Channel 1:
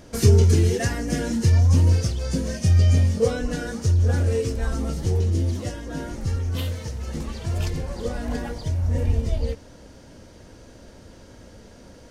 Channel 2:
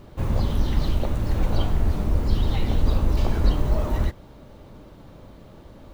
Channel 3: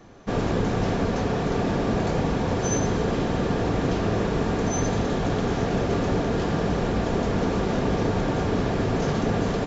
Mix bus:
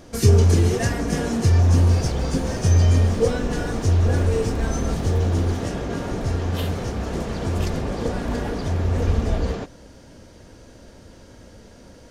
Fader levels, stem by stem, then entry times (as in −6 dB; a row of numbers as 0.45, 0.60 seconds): +0.5, −12.0, −5.0 decibels; 0.00, 1.45, 0.00 seconds